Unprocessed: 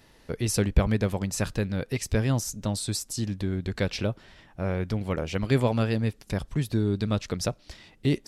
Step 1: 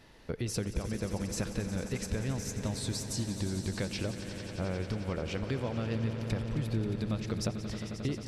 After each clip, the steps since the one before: high shelf 9000 Hz -10 dB; compressor, threshold -31 dBFS, peak gain reduction 16.5 dB; swelling echo 89 ms, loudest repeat 5, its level -13.5 dB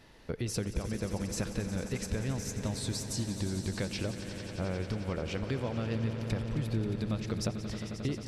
nothing audible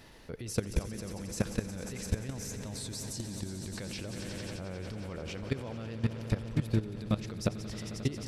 high shelf 8400 Hz +6.5 dB; level quantiser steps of 15 dB; gain +5.5 dB

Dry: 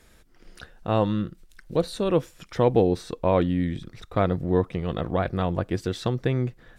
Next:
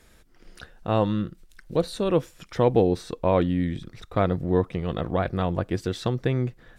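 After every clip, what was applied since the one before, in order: nothing audible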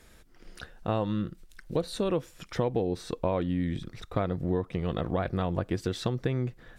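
compressor 6:1, threshold -24 dBFS, peak gain reduction 10 dB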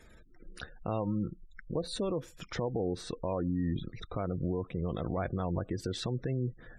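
limiter -23 dBFS, peak gain reduction 9.5 dB; spectral gate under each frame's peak -25 dB strong

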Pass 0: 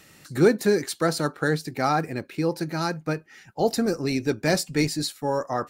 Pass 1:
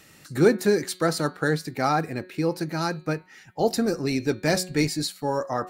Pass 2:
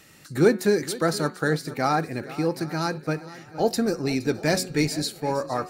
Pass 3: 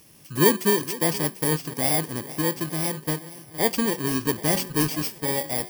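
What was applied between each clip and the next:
de-hum 183.4 Hz, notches 25
swung echo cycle 0.778 s, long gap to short 1.5:1, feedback 34%, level -17 dB
FFT order left unsorted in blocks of 32 samples

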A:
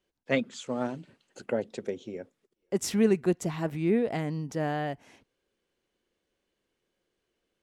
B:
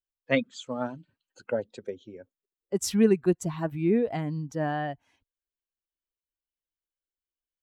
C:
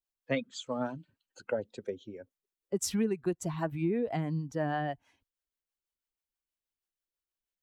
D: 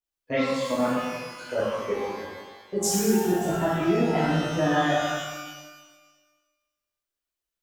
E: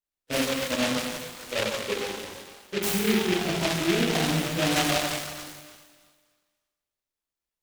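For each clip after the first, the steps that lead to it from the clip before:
per-bin expansion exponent 1.5; gain +3.5 dB
harmonic tremolo 6.2 Hz, depth 50%, crossover 430 Hz; compressor 6:1, threshold -28 dBFS, peak gain reduction 11 dB; gain +1.5 dB
level quantiser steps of 17 dB; shimmer reverb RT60 1.3 s, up +12 st, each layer -8 dB, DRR -10.5 dB; gain +2.5 dB
noise-modulated delay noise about 2300 Hz, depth 0.2 ms; gain -1.5 dB

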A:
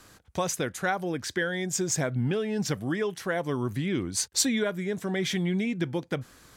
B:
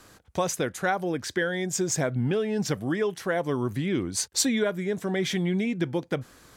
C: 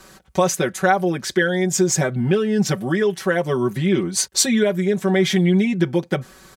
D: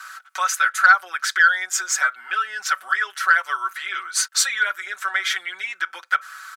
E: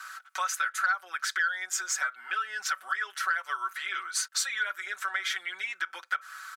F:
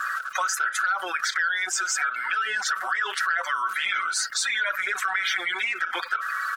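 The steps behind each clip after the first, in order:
bell 510 Hz +3 dB 2.2 oct
comb 5.3 ms, depth 93%; gain +4.5 dB
in parallel at +2 dB: compressor, threshold -25 dBFS, peak gain reduction 13 dB; on the sum: ladder high-pass 1300 Hz, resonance 80%; soft clip -10 dBFS, distortion -23 dB; gain +8 dB
compressor 2.5:1, threshold -24 dBFS, peak gain reduction 10.5 dB; gain -4.5 dB
bin magnitudes rounded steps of 30 dB; high shelf 4800 Hz -8 dB; fast leveller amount 70%; gain +2 dB

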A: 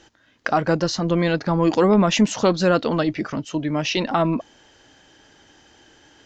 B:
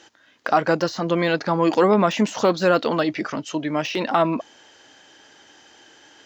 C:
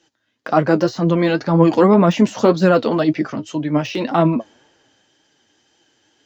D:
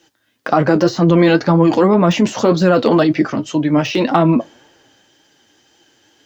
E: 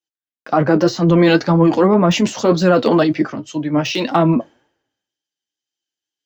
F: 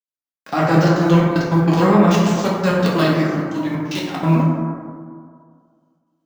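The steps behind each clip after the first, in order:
de-esser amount 80%; HPF 430 Hz 6 dB/oct; gain +3.5 dB
flange 1.9 Hz, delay 5.5 ms, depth 4.4 ms, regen +49%; low shelf 440 Hz +11.5 dB; three-band expander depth 40%; gain +3 dB
in parallel at 0 dB: negative-ratio compressor -16 dBFS, ratio -0.5; on the sum: requantised 12-bit, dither triangular; reverb RT60 0.25 s, pre-delay 3 ms, DRR 16 dB; gain -2 dB
three-band expander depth 100%; gain -1 dB
spectral whitening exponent 0.6; step gate ".x.x.xxxxxx.xxx." 188 bpm -24 dB; plate-style reverb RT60 2 s, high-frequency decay 0.3×, DRR -5 dB; gain -7 dB

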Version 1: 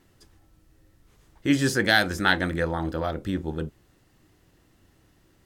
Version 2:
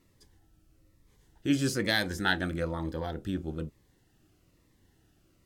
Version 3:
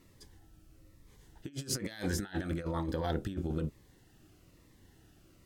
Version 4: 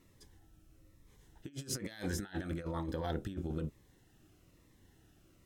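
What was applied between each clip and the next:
cascading phaser falling 1.1 Hz; gain -4.5 dB
negative-ratio compressor -35 dBFS, ratio -0.5
notch 4600 Hz, Q 13; gain -3.5 dB

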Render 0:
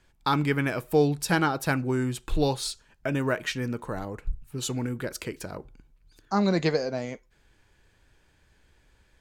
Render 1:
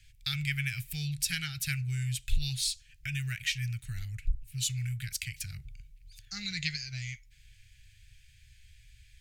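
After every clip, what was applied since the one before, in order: elliptic band-stop 120–2200 Hz, stop band 40 dB; in parallel at +2 dB: compressor, threshold -45 dBFS, peak gain reduction 22 dB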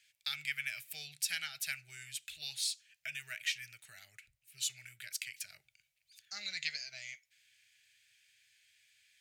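resonant high-pass 590 Hz, resonance Q 4.9; gain -4 dB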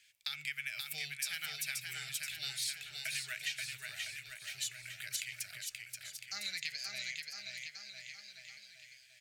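compressor 4:1, threshold -39 dBFS, peak gain reduction 9 dB; on a send: bouncing-ball echo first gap 0.53 s, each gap 0.9×, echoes 5; on the sum: gain +3 dB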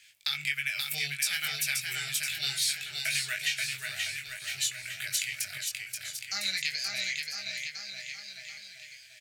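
doubler 21 ms -5 dB; gain +7.5 dB

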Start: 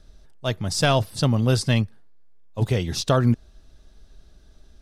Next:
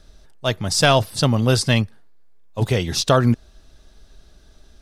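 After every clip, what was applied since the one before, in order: low shelf 360 Hz -5 dB; gain +6 dB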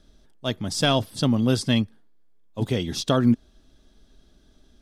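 small resonant body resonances 250/3300 Hz, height 10 dB, ringing for 20 ms; gain -8.5 dB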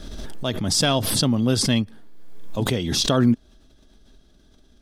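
backwards sustainer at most 30 dB/s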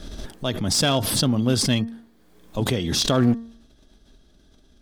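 one-sided clip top -17.5 dBFS, bottom -9 dBFS; de-hum 229.7 Hz, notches 8

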